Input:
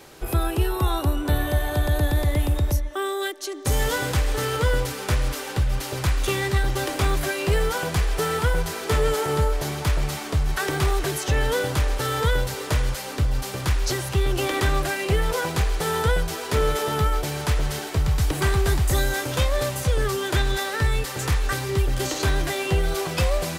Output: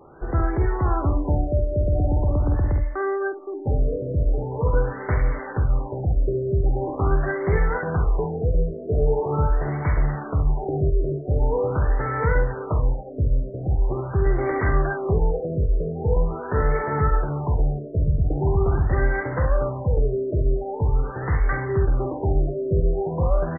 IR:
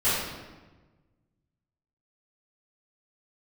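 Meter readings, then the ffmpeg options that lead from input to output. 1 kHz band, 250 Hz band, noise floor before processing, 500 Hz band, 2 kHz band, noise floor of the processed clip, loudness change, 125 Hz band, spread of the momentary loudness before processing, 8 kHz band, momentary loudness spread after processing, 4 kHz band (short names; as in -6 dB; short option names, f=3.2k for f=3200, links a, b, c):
-1.0 dB, +1.5 dB, -33 dBFS, +1.5 dB, -5.0 dB, -34 dBFS, +0.5 dB, +1.5 dB, 3 LU, under -40 dB, 3 LU, under -40 dB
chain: -af "aecho=1:1:49|69:0.398|0.376,afftfilt=real='re*lt(b*sr/1024,660*pow(2300/660,0.5+0.5*sin(2*PI*0.43*pts/sr)))':imag='im*lt(b*sr/1024,660*pow(2300/660,0.5+0.5*sin(2*PI*0.43*pts/sr)))':win_size=1024:overlap=0.75"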